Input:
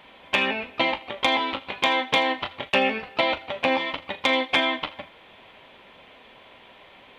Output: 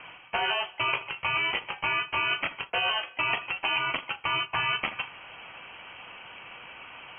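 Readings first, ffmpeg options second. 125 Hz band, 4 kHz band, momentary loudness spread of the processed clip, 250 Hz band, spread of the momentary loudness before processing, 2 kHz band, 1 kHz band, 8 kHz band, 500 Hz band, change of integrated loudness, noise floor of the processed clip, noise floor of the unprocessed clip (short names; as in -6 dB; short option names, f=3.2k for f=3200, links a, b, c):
-0.5 dB, -3.5 dB, 17 LU, -16.0 dB, 8 LU, -2.5 dB, -4.5 dB, under -30 dB, -12.0 dB, -4.0 dB, -51 dBFS, -51 dBFS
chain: -af "bandreject=f=520:w=12,areverse,acompressor=threshold=-31dB:ratio=5,areverse,lowpass=f=2.8k:t=q:w=0.5098,lowpass=f=2.8k:t=q:w=0.6013,lowpass=f=2.8k:t=q:w=0.9,lowpass=f=2.8k:t=q:w=2.563,afreqshift=-3300,acontrast=47"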